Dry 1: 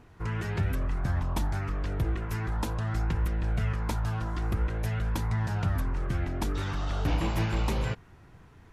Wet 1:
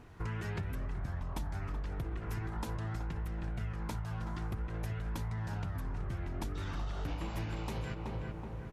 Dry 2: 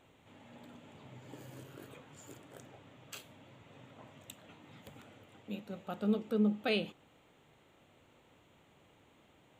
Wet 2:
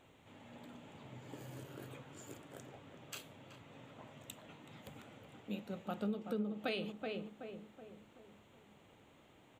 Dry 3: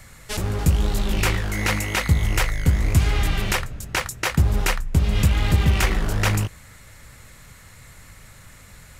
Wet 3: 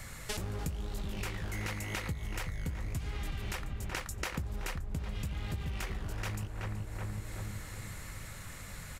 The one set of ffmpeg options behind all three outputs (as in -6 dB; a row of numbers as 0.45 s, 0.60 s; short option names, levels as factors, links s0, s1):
-filter_complex "[0:a]asplit=2[s0][s1];[s1]adelay=376,lowpass=f=1600:p=1,volume=0.422,asplit=2[s2][s3];[s3]adelay=376,lowpass=f=1600:p=1,volume=0.48,asplit=2[s4][s5];[s5]adelay=376,lowpass=f=1600:p=1,volume=0.48,asplit=2[s6][s7];[s7]adelay=376,lowpass=f=1600:p=1,volume=0.48,asplit=2[s8][s9];[s9]adelay=376,lowpass=f=1600:p=1,volume=0.48,asplit=2[s10][s11];[s11]adelay=376,lowpass=f=1600:p=1,volume=0.48[s12];[s2][s4][s6][s8][s10][s12]amix=inputs=6:normalize=0[s13];[s0][s13]amix=inputs=2:normalize=0,acompressor=threshold=0.02:ratio=10"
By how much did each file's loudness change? -8.5 LU, -9.5 LU, -17.0 LU